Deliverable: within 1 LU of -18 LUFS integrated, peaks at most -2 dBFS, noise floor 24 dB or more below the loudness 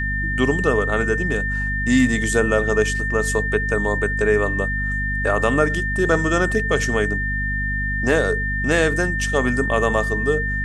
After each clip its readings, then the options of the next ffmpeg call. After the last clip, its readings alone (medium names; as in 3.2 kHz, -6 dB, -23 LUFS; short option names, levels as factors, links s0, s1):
hum 50 Hz; highest harmonic 250 Hz; hum level -23 dBFS; steady tone 1.8 kHz; tone level -23 dBFS; loudness -20.0 LUFS; peak level -4.0 dBFS; loudness target -18.0 LUFS
-> -af "bandreject=f=50:t=h:w=6,bandreject=f=100:t=h:w=6,bandreject=f=150:t=h:w=6,bandreject=f=200:t=h:w=6,bandreject=f=250:t=h:w=6"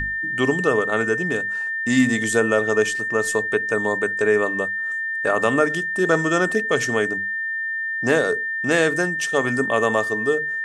hum not found; steady tone 1.8 kHz; tone level -23 dBFS
-> -af "bandreject=f=1800:w=30"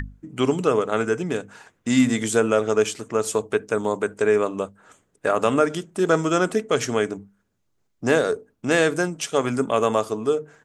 steady tone not found; loudness -22.5 LUFS; peak level -5.0 dBFS; loudness target -18.0 LUFS
-> -af "volume=1.68,alimiter=limit=0.794:level=0:latency=1"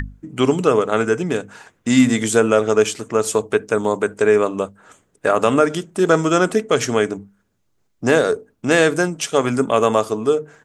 loudness -18.0 LUFS; peak level -2.0 dBFS; noise floor -65 dBFS